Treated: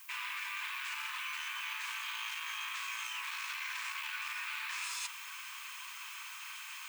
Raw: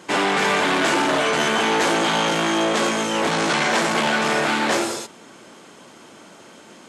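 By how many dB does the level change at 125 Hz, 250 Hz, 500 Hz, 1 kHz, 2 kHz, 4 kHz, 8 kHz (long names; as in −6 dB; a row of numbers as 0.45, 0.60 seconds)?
below −40 dB, below −40 dB, below −40 dB, −23.0 dB, −16.0 dB, −16.5 dB, −16.0 dB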